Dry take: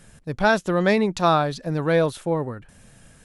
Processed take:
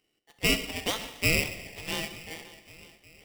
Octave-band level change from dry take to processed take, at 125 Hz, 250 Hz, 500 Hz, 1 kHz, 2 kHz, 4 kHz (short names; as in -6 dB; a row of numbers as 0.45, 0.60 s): -10.5, -12.5, -15.5, -18.5, -4.0, +3.5 dB